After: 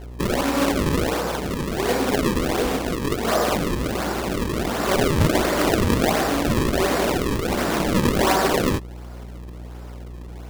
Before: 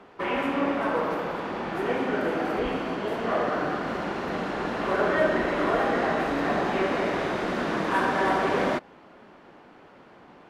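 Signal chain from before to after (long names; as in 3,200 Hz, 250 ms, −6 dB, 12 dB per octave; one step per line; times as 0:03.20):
sample-and-hold swept by an LFO 35×, swing 160% 1.4 Hz
hum with harmonics 60 Hz, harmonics 17, −41 dBFS −8 dB per octave
level +5 dB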